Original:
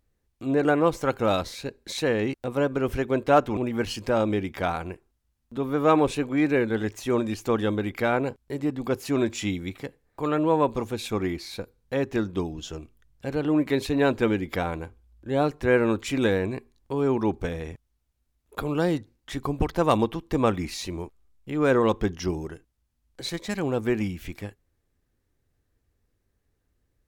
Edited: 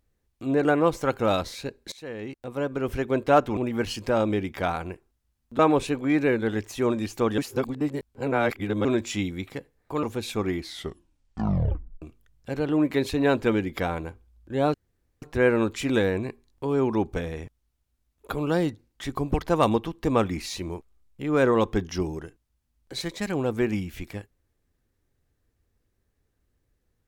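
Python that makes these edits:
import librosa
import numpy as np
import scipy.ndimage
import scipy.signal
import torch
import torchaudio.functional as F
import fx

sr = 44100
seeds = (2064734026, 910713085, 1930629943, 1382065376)

y = fx.edit(x, sr, fx.fade_in_from(start_s=1.92, length_s=1.23, floor_db=-19.5),
    fx.cut(start_s=5.59, length_s=0.28),
    fx.reverse_span(start_s=7.66, length_s=1.47),
    fx.cut(start_s=10.31, length_s=0.48),
    fx.tape_stop(start_s=11.35, length_s=1.43),
    fx.insert_room_tone(at_s=15.5, length_s=0.48), tone=tone)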